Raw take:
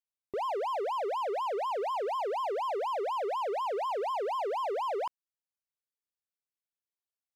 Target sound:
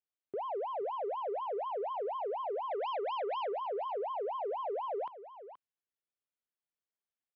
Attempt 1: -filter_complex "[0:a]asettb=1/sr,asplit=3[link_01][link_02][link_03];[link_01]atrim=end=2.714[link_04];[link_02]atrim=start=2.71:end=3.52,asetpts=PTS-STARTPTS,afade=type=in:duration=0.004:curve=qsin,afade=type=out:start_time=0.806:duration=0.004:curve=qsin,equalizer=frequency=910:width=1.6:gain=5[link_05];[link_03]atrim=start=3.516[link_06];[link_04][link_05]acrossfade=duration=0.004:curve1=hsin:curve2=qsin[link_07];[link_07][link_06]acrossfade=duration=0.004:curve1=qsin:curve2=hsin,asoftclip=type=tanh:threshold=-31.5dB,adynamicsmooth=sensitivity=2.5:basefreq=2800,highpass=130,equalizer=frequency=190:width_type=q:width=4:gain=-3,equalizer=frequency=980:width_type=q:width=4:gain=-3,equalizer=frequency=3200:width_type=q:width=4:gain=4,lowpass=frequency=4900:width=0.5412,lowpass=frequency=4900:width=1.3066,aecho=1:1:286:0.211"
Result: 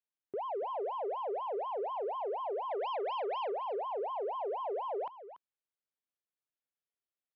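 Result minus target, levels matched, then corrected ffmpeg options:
echo 191 ms early
-filter_complex "[0:a]asettb=1/sr,asplit=3[link_01][link_02][link_03];[link_01]atrim=end=2.714[link_04];[link_02]atrim=start=2.71:end=3.52,asetpts=PTS-STARTPTS,afade=type=in:duration=0.004:curve=qsin,afade=type=out:start_time=0.806:duration=0.004:curve=qsin,equalizer=frequency=910:width=1.6:gain=5[link_05];[link_03]atrim=start=3.516[link_06];[link_04][link_05]acrossfade=duration=0.004:curve1=hsin:curve2=qsin[link_07];[link_07][link_06]acrossfade=duration=0.004:curve1=qsin:curve2=hsin,asoftclip=type=tanh:threshold=-31.5dB,adynamicsmooth=sensitivity=2.5:basefreq=2800,highpass=130,equalizer=frequency=190:width_type=q:width=4:gain=-3,equalizer=frequency=980:width_type=q:width=4:gain=-3,equalizer=frequency=3200:width_type=q:width=4:gain=4,lowpass=frequency=4900:width=0.5412,lowpass=frequency=4900:width=1.3066,aecho=1:1:477:0.211"

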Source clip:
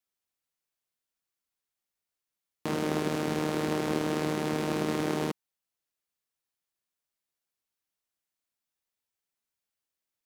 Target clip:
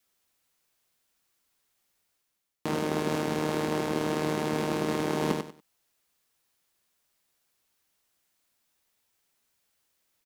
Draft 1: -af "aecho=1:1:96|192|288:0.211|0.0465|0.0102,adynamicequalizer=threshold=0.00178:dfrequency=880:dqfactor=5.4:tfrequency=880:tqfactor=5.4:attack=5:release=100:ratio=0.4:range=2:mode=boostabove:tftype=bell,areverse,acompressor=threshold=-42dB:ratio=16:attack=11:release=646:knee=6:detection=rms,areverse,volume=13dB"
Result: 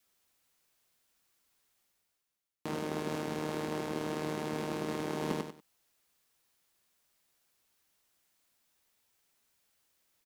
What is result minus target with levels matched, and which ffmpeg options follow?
downward compressor: peak gain reduction +7 dB
-af "aecho=1:1:96|192|288:0.211|0.0465|0.0102,adynamicequalizer=threshold=0.00178:dfrequency=880:dqfactor=5.4:tfrequency=880:tqfactor=5.4:attack=5:release=100:ratio=0.4:range=2:mode=boostabove:tftype=bell,areverse,acompressor=threshold=-34.5dB:ratio=16:attack=11:release=646:knee=6:detection=rms,areverse,volume=13dB"

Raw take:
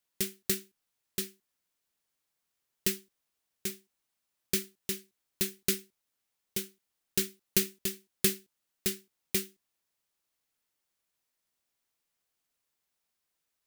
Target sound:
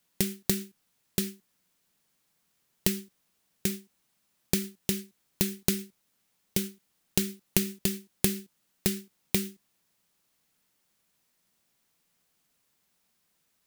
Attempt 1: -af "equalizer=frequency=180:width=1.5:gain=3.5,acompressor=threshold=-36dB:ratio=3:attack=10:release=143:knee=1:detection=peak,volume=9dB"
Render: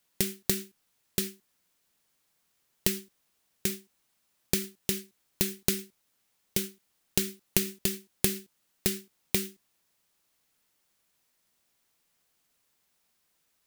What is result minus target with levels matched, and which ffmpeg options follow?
250 Hz band −3.5 dB
-af "equalizer=frequency=180:width=1.5:gain=9.5,acompressor=threshold=-36dB:ratio=3:attack=10:release=143:knee=1:detection=peak,volume=9dB"

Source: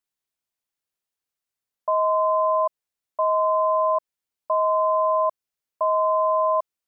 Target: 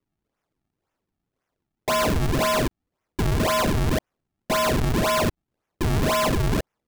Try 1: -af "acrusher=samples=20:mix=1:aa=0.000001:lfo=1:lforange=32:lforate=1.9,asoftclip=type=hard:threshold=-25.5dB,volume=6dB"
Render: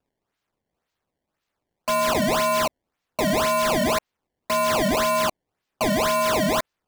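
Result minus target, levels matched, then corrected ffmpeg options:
sample-and-hold swept by an LFO: distortion −8 dB
-af "acrusher=samples=50:mix=1:aa=0.000001:lfo=1:lforange=80:lforate=1.9,asoftclip=type=hard:threshold=-25.5dB,volume=6dB"

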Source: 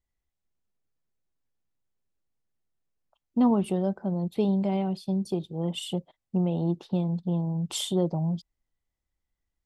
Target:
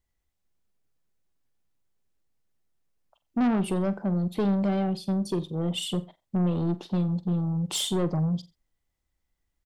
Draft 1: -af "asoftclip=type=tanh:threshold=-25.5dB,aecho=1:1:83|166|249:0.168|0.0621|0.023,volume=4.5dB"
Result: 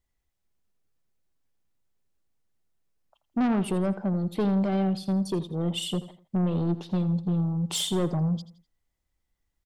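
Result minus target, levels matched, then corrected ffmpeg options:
echo 38 ms late
-af "asoftclip=type=tanh:threshold=-25.5dB,aecho=1:1:45|90|135:0.168|0.0621|0.023,volume=4.5dB"

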